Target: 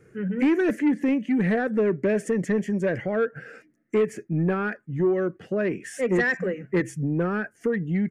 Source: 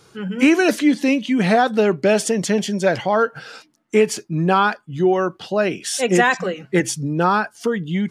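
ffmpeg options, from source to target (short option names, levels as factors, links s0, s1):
-filter_complex "[0:a]firequalizer=gain_entry='entry(490,0);entry(910,-20);entry(1800,2);entry(3700,-29);entry(6800,-15)':delay=0.05:min_phase=1,asplit=2[s0][s1];[s1]acompressor=threshold=0.0708:ratio=6,volume=0.794[s2];[s0][s2]amix=inputs=2:normalize=0,asoftclip=type=tanh:threshold=0.355,volume=0.531"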